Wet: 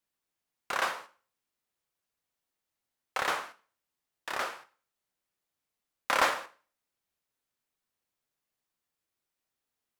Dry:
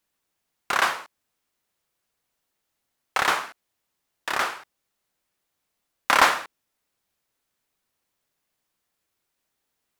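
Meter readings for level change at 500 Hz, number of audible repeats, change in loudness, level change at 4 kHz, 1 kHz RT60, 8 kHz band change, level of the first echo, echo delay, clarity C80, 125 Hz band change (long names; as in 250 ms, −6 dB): −4.5 dB, no echo audible, −8.5 dB, −8.5 dB, 0.40 s, −8.5 dB, no echo audible, no echo audible, 22.5 dB, −8.5 dB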